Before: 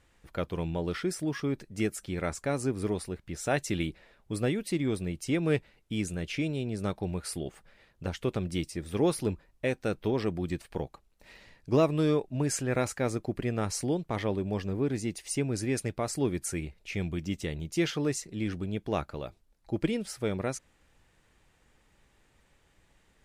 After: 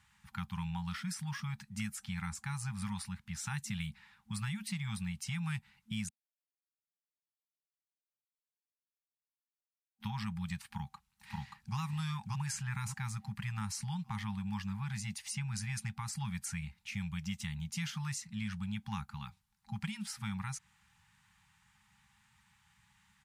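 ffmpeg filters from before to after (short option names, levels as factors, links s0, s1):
-filter_complex "[0:a]asplit=2[s0][s1];[s1]afade=t=in:st=10.65:d=0.01,afade=t=out:st=11.77:d=0.01,aecho=0:1:580|1160|1740|2320:0.891251|0.267375|0.0802126|0.0240638[s2];[s0][s2]amix=inputs=2:normalize=0,asplit=3[s3][s4][s5];[s3]atrim=end=6.09,asetpts=PTS-STARTPTS,afade=t=out:st=6.086:d=0.004:c=hsin[s6];[s4]atrim=start=6.09:end=10,asetpts=PTS-STARTPTS,volume=0[s7];[s5]atrim=start=10,asetpts=PTS-STARTPTS,afade=t=in:d=0.004:c=hsin[s8];[s6][s7][s8]concat=n=3:v=0:a=1,highpass=92,afftfilt=real='re*(1-between(b*sr/4096,220,780))':imag='im*(1-between(b*sr/4096,220,780))':win_size=4096:overlap=0.75,acrossover=split=340|6600[s9][s10][s11];[s9]acompressor=threshold=0.0158:ratio=4[s12];[s10]acompressor=threshold=0.00794:ratio=4[s13];[s11]acompressor=threshold=0.00501:ratio=4[s14];[s12][s13][s14]amix=inputs=3:normalize=0"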